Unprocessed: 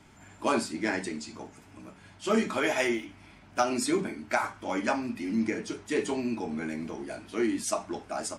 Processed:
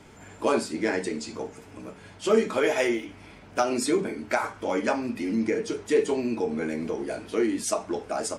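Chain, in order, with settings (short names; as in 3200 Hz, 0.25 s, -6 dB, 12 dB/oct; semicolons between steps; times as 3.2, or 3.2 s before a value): bell 470 Hz +11.5 dB 0.42 oct; in parallel at +2 dB: compressor, threshold -32 dBFS, peak gain reduction 16 dB; on the sum: gain -2.5 dB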